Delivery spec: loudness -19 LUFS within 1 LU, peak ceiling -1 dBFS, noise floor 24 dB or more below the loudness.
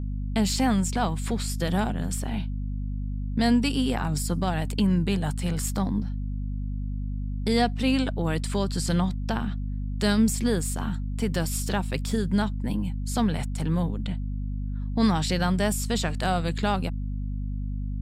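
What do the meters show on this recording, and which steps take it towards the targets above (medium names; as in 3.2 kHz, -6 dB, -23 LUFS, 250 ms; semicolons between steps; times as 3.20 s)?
hum 50 Hz; highest harmonic 250 Hz; hum level -27 dBFS; loudness -27.0 LUFS; peak level -10.5 dBFS; loudness target -19.0 LUFS
-> hum notches 50/100/150/200/250 Hz; trim +8 dB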